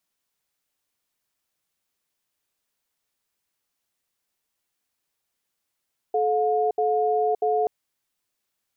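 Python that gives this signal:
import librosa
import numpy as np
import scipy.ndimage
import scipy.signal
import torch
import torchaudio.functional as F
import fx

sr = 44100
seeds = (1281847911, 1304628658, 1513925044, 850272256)

y = fx.cadence(sr, length_s=1.53, low_hz=432.0, high_hz=716.0, on_s=0.57, off_s=0.07, level_db=-22.0)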